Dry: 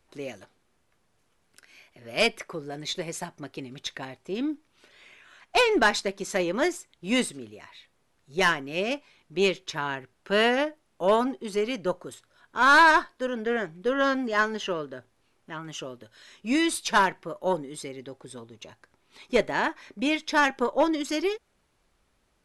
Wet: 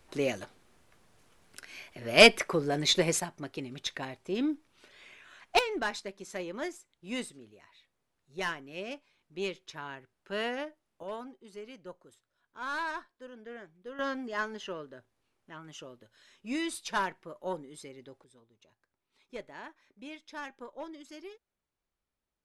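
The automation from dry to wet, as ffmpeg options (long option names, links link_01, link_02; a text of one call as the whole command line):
ffmpeg -i in.wav -af "asetnsamples=nb_out_samples=441:pad=0,asendcmd='3.2 volume volume -1dB;5.59 volume volume -11.5dB;11.03 volume volume -18dB;13.99 volume volume -9.5dB;18.24 volume volume -19.5dB',volume=6.5dB" out.wav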